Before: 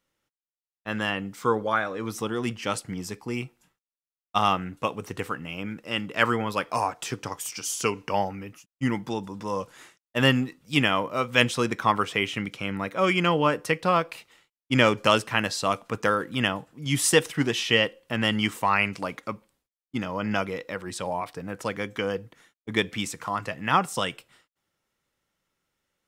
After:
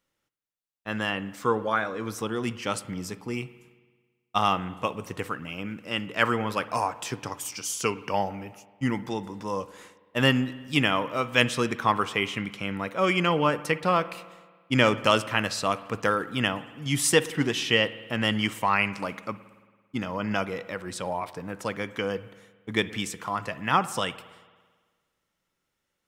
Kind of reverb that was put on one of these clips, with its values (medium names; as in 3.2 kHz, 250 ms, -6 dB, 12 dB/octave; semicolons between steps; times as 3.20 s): spring tank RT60 1.5 s, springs 55 ms, chirp 55 ms, DRR 15.5 dB; trim -1 dB